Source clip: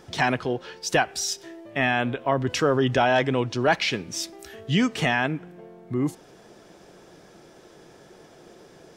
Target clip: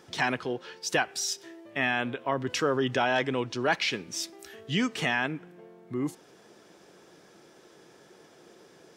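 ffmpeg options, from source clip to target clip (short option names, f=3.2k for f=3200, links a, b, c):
-af "highpass=f=230:p=1,equalizer=f=670:t=o:w=0.6:g=-4,volume=-3dB"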